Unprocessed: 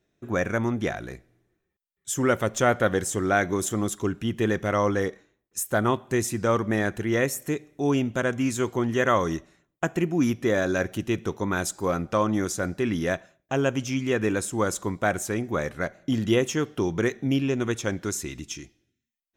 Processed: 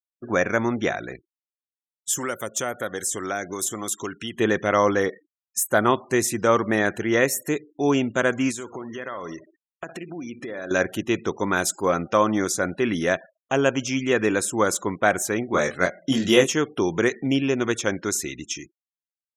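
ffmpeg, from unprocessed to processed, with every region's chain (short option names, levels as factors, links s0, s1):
-filter_complex "[0:a]asettb=1/sr,asplit=3[s0][s1][s2];[s0]atrim=end=2.134[s3];[s1]atrim=start=2.13:end=4.38,asetpts=PTS-STARTPTS,afade=t=in:d=0.004:c=qsin,afade=t=out:st=2.246:d=0.004:c=qsin,highshelf=f=3400:g=5,acrossover=split=630|7100[s4][s5][s6];[s4]acompressor=threshold=0.0178:ratio=4[s7];[s5]acompressor=threshold=0.0158:ratio=4[s8];[s6]acompressor=threshold=0.02:ratio=4[s9];[s7][s8][s9]amix=inputs=3:normalize=0[s10];[s2]atrim=start=4.376[s11];[s3][s10]acrossfade=d=0.004:c1=hsin:c2=qsin[s12];[s12][s11]acrossfade=d=0.004:c1=qsin:c2=hsin,asettb=1/sr,asplit=3[s13][s14][s15];[s13]atrim=end=8.514[s16];[s14]atrim=start=8.51:end=10.71,asetpts=PTS-STARTPTS,afade=t=in:d=0.004:c=qsin,afade=t=out:st=2.196:d=0.004:c=qsin,lowshelf=f=130:g=-6,acompressor=threshold=0.0224:ratio=12:attack=3.2:release=140:knee=1:detection=peak,aecho=1:1:64|128|192:0.237|0.0735|0.0228,atrim=end_sample=97020[s17];[s15]atrim=start=10.706[s18];[s16][s17]acrossfade=d=0.004:c1=hsin:c2=qsin[s19];[s19][s18]acrossfade=d=0.004:c1=qsin:c2=hsin,asettb=1/sr,asplit=3[s20][s21][s22];[s20]atrim=end=15.484[s23];[s21]atrim=start=15.48:end=16.47,asetpts=PTS-STARTPTS,afade=t=in:d=0.004:c=qsin,afade=t=out:st=0.986:d=0.004:c=qsin,asplit=2[s24][s25];[s25]adelay=22,volume=0.708[s26];[s24][s26]amix=inputs=2:normalize=0,atrim=end_sample=43659,adynamicequalizer=threshold=0.00794:dfrequency=2900:dqfactor=0.7:tfrequency=2900:tqfactor=0.7:attack=5:release=100:ratio=0.375:range=2.5:mode=boostabove:tftype=highshelf[s27];[s22]atrim=start=16.466[s28];[s23][s27]acrossfade=d=0.004:c1=hsin:c2=qsin[s29];[s29][s28]acrossfade=d=0.004:c1=qsin:c2=hsin,highpass=f=290:p=1,afftfilt=real='re*gte(hypot(re,im),0.00501)':imag='im*gte(hypot(re,im),0.00501)':win_size=1024:overlap=0.75,volume=1.88"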